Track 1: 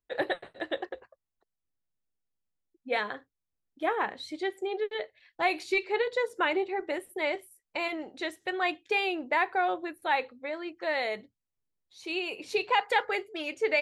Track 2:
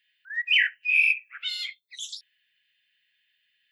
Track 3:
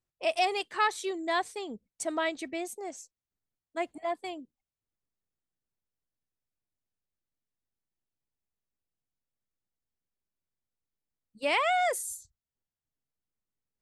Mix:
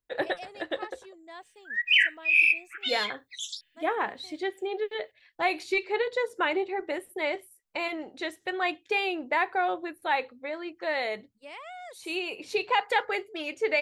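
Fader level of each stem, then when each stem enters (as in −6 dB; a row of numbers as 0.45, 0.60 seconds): +0.5, 0.0, −16.5 decibels; 0.00, 1.40, 0.00 seconds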